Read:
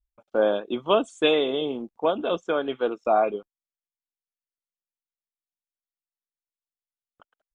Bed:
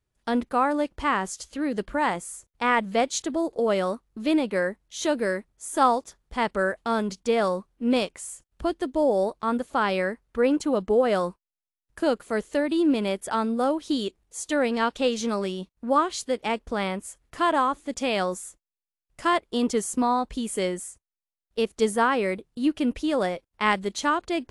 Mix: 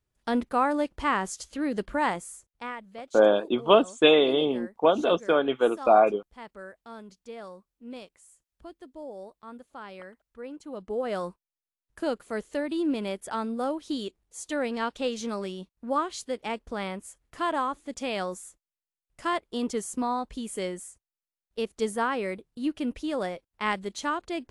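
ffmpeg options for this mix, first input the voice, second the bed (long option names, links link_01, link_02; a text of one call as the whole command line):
ffmpeg -i stem1.wav -i stem2.wav -filter_complex "[0:a]adelay=2800,volume=2.5dB[link_01];[1:a]volume=11.5dB,afade=type=out:start_time=2.05:duration=0.73:silence=0.141254,afade=type=in:start_time=10.61:duration=0.71:silence=0.223872[link_02];[link_01][link_02]amix=inputs=2:normalize=0" out.wav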